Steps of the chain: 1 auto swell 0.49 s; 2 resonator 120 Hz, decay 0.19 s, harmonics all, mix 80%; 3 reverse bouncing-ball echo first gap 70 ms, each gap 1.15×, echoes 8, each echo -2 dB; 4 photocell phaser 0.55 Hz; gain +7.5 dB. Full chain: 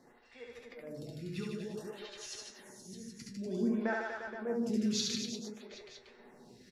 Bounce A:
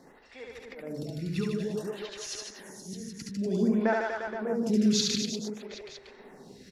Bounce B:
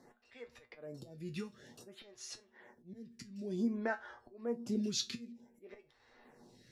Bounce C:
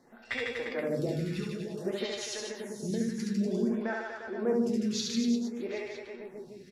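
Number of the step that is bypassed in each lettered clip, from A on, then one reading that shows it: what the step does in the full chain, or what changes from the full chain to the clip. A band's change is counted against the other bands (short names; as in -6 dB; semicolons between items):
2, 2 kHz band -2.5 dB; 3, crest factor change +3.0 dB; 1, crest factor change -3.5 dB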